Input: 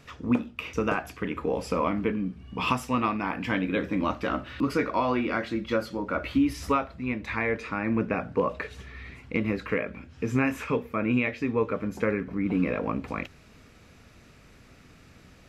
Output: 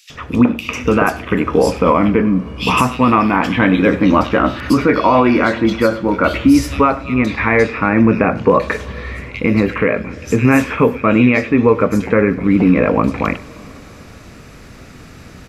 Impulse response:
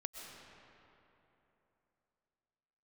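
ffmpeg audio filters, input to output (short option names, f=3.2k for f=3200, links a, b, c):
-filter_complex "[0:a]acrossover=split=2900[a][b];[a]adelay=100[c];[c][b]amix=inputs=2:normalize=0,asplit=2[d][e];[1:a]atrim=start_sample=2205,asetrate=41895,aresample=44100,adelay=98[f];[e][f]afir=irnorm=-1:irlink=0,volume=-17dB[g];[d][g]amix=inputs=2:normalize=0,alimiter=level_in=16.5dB:limit=-1dB:release=50:level=0:latency=1,volume=-1dB"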